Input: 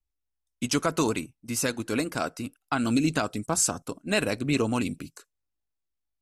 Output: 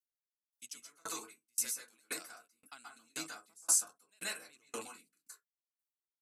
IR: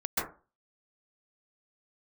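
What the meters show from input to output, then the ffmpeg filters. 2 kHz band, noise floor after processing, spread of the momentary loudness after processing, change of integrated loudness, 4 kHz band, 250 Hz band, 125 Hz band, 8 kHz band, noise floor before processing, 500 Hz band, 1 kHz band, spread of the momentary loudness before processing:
-15.0 dB, under -85 dBFS, 27 LU, -9.5 dB, -11.5 dB, -29.0 dB, under -35 dB, -4.5 dB, -82 dBFS, -23.0 dB, -18.0 dB, 10 LU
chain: -filter_complex "[0:a]aderivative[s0];[1:a]atrim=start_sample=2205,afade=t=out:st=0.25:d=0.01,atrim=end_sample=11466[s1];[s0][s1]afir=irnorm=-1:irlink=0,aeval=exprs='val(0)*pow(10,-36*if(lt(mod(1.9*n/s,1),2*abs(1.9)/1000),1-mod(1.9*n/s,1)/(2*abs(1.9)/1000),(mod(1.9*n/s,1)-2*abs(1.9)/1000)/(1-2*abs(1.9)/1000))/20)':c=same,volume=0.841"

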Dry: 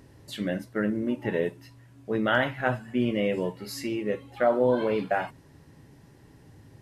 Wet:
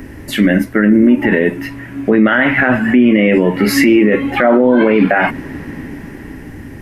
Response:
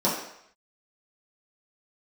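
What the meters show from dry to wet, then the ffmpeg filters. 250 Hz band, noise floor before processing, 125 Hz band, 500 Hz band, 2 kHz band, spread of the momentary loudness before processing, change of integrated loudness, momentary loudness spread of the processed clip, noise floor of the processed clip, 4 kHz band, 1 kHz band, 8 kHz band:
+19.0 dB, -55 dBFS, +14.0 dB, +12.5 dB, +17.0 dB, 9 LU, +16.0 dB, 18 LU, -32 dBFS, +13.0 dB, +12.0 dB, +16.5 dB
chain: -filter_complex "[0:a]lowshelf=f=71:g=7.5,acrossover=split=120|4200[s0][s1][s2];[s1]dynaudnorm=f=460:g=7:m=3.76[s3];[s0][s3][s2]amix=inputs=3:normalize=0,equalizer=f=125:t=o:w=1:g=-12,equalizer=f=250:t=o:w=1:g=6,equalizer=f=500:t=o:w=1:g=-5,equalizer=f=1000:t=o:w=1:g=-5,equalizer=f=2000:t=o:w=1:g=7,equalizer=f=4000:t=o:w=1:g=-11,equalizer=f=8000:t=o:w=1:g=-6,acompressor=threshold=0.0708:ratio=6,alimiter=level_in=15:limit=0.891:release=50:level=0:latency=1,volume=0.891"

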